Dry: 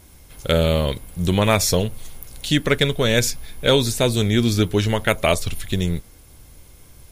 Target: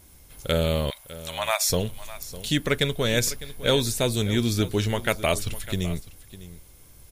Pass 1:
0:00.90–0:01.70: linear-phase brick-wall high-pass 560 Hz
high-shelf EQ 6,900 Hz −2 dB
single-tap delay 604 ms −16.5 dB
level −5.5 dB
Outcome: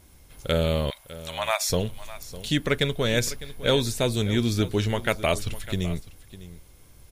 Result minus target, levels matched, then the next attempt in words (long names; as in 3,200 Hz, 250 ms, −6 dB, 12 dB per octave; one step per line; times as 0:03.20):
8,000 Hz band −3.0 dB
0:00.90–0:01.70: linear-phase brick-wall high-pass 560 Hz
high-shelf EQ 6,900 Hz +5 dB
single-tap delay 604 ms −16.5 dB
level −5.5 dB